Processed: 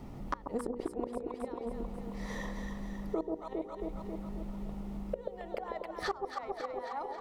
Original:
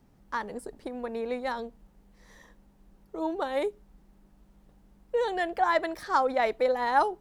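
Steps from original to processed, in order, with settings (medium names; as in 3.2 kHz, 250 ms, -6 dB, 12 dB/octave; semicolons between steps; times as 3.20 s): band-stop 1.6 kHz, Q 5.2; inverted gate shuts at -26 dBFS, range -31 dB; treble shelf 4 kHz -10 dB; hum notches 60/120/180/240/300/360/420/480/540 Hz; echo whose repeats swap between lows and highs 135 ms, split 830 Hz, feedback 72%, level -3 dB; compression 4:1, threshold -50 dBFS, peak gain reduction 14.5 dB; trim +16.5 dB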